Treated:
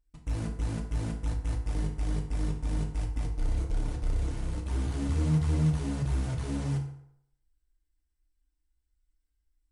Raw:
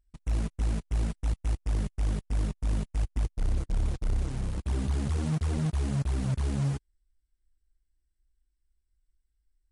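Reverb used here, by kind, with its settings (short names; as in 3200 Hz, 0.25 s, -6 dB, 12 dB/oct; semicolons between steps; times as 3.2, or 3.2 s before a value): FDN reverb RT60 0.72 s, low-frequency decay 0.85×, high-frequency decay 0.65×, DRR -0.5 dB; gain -3.5 dB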